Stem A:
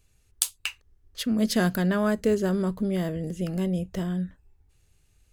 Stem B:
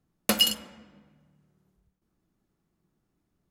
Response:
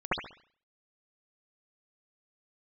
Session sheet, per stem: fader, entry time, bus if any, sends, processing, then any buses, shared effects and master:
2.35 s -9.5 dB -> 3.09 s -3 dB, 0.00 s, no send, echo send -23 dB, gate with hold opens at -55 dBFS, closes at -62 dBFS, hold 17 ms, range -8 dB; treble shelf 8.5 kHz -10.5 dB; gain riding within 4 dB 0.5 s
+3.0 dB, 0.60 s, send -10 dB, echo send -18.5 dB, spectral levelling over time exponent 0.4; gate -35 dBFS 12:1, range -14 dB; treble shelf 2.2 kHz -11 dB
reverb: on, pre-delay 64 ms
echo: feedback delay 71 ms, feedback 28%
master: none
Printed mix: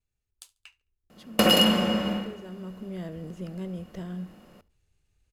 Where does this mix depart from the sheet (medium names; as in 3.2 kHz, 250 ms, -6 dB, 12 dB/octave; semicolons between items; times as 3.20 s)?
stem A -9.5 dB -> -16.5 dB; stem B: entry 0.60 s -> 1.10 s